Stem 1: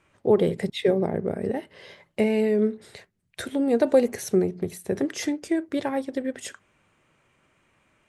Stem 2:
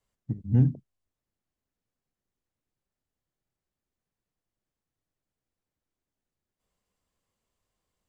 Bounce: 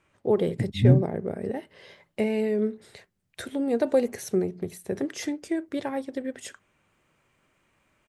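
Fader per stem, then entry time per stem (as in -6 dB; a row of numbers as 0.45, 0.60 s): -3.5, +3.0 dB; 0.00, 0.30 s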